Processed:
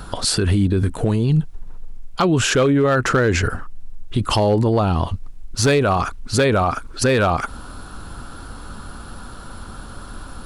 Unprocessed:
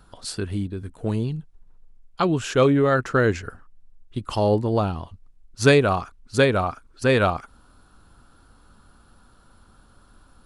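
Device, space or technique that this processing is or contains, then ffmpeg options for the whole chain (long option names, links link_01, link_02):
loud club master: -af "acompressor=threshold=-22dB:ratio=2.5,asoftclip=type=hard:threshold=-17dB,alimiter=level_in=28dB:limit=-1dB:release=50:level=0:latency=1,volume=-9dB"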